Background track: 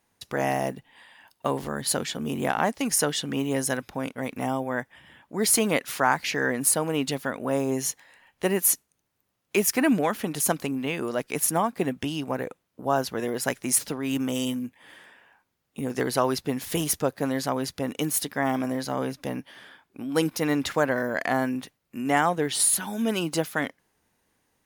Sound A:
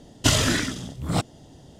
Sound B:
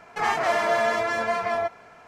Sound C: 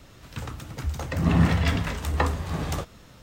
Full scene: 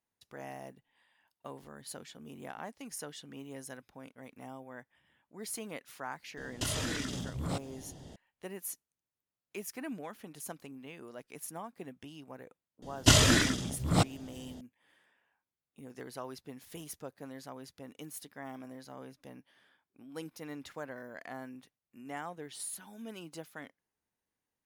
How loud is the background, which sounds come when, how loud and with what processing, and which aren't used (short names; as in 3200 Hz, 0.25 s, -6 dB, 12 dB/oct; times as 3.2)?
background track -19 dB
6.37 add A -2 dB + compressor 4:1, threshold -31 dBFS
12.82 add A -2 dB
not used: B, C